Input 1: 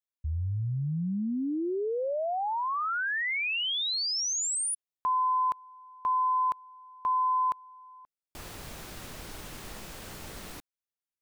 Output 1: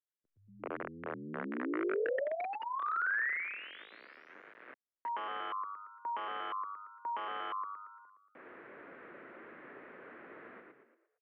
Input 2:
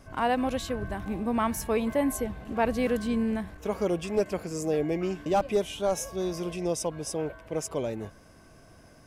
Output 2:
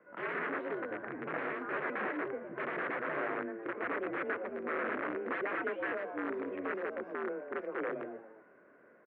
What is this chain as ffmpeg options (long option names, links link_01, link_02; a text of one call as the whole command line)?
ffmpeg -i in.wav -filter_complex "[0:a]asplit=2[link_01][link_02];[link_02]asplit=5[link_03][link_04][link_05][link_06][link_07];[link_03]adelay=115,afreqshift=100,volume=-5dB[link_08];[link_04]adelay=230,afreqshift=200,volume=-12.3dB[link_09];[link_05]adelay=345,afreqshift=300,volume=-19.7dB[link_10];[link_06]adelay=460,afreqshift=400,volume=-27dB[link_11];[link_07]adelay=575,afreqshift=500,volume=-34.3dB[link_12];[link_08][link_09][link_10][link_11][link_12]amix=inputs=5:normalize=0[link_13];[link_01][link_13]amix=inputs=2:normalize=0,aeval=exprs='(mod(13.3*val(0)+1,2)-1)/13.3':channel_layout=same,equalizer=frequency=920:width=1.6:gain=-11.5,highpass=frequency=420:width_type=q:width=0.5412,highpass=frequency=420:width_type=q:width=1.307,lowpass=frequency=2000:width_type=q:width=0.5176,lowpass=frequency=2000:width_type=q:width=0.7071,lowpass=frequency=2000:width_type=q:width=1.932,afreqshift=-79" out.wav